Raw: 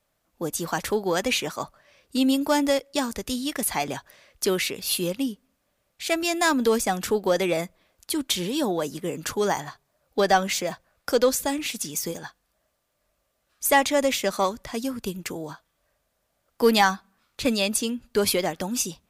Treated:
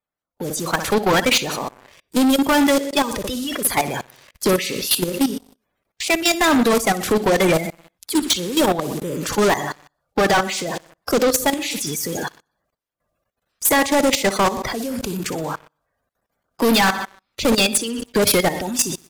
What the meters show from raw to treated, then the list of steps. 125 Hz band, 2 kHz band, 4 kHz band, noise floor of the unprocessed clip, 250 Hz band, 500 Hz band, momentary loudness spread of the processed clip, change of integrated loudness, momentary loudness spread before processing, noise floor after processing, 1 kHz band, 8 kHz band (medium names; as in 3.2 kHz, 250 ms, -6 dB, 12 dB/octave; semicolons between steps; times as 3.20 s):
+8.0 dB, +6.5 dB, +6.5 dB, -74 dBFS, +6.5 dB, +4.5 dB, 12 LU, +5.5 dB, 12 LU, -79 dBFS, +5.0 dB, +6.0 dB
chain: coarse spectral quantiser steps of 30 dB; on a send: feedback delay 61 ms, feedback 50%, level -13 dB; on the sum: hard clipper -15 dBFS, distortion -18 dB; level rider gain up to 8.5 dB; in parallel at -9 dB: saturation -24.5 dBFS, distortion -4 dB; on the sum: level held to a coarse grid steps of 16 dB; waveshaping leveller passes 3; trim -4.5 dB